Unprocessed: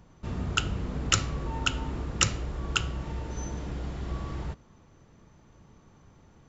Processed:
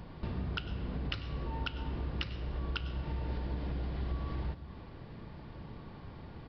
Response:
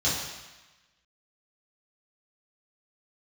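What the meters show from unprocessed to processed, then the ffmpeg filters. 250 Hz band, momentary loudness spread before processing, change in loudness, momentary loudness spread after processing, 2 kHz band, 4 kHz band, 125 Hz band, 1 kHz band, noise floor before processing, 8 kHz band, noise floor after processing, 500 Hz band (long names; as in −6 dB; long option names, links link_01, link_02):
−4.5 dB, 10 LU, −8.5 dB, 11 LU, −10.5 dB, −11.5 dB, −4.0 dB, −8.5 dB, −58 dBFS, can't be measured, −49 dBFS, −5.0 dB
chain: -filter_complex "[0:a]bandreject=frequency=1300:width=12,acompressor=threshold=-43dB:ratio=10,asplit=2[link_01][link_02];[1:a]atrim=start_sample=2205,adelay=95[link_03];[link_02][link_03]afir=irnorm=-1:irlink=0,volume=-25dB[link_04];[link_01][link_04]amix=inputs=2:normalize=0,aresample=11025,aresample=44100,volume=8.5dB"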